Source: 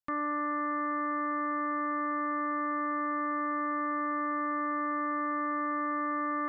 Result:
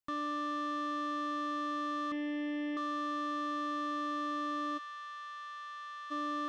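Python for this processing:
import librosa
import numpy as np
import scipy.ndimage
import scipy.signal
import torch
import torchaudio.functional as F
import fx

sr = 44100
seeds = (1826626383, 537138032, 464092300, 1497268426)

y = fx.comb(x, sr, ms=7.2, depth=0.94, at=(2.11, 2.77))
y = 10.0 ** (-32.0 / 20.0) * np.tanh(y / 10.0 ** (-32.0 / 20.0))
y = fx.ladder_highpass(y, sr, hz=1100.0, resonance_pct=25, at=(4.77, 6.1), fade=0.02)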